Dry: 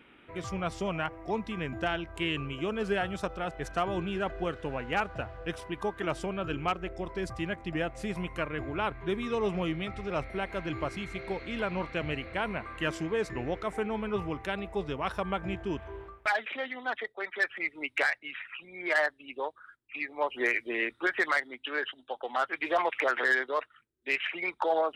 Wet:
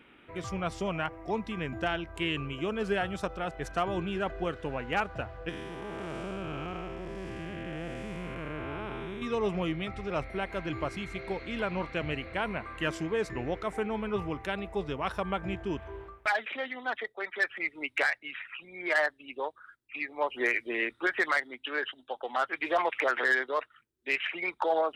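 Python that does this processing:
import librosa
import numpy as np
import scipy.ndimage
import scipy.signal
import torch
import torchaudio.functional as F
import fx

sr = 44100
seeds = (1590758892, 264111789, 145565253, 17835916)

y = fx.spec_blur(x, sr, span_ms=359.0, at=(5.49, 9.22))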